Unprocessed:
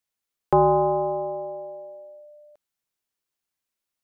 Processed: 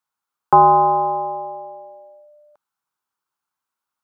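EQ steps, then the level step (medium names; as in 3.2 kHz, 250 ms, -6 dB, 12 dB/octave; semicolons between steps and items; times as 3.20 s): high-pass 140 Hz 6 dB/octave; bass shelf 230 Hz +6 dB; high-order bell 1.1 kHz +13.5 dB 1.1 oct; -2.0 dB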